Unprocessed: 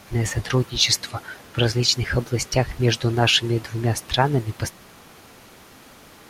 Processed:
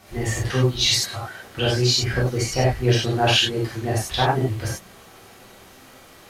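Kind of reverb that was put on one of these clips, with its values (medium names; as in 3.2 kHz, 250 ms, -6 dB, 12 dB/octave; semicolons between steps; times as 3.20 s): gated-style reverb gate 120 ms flat, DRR -6.5 dB; trim -7 dB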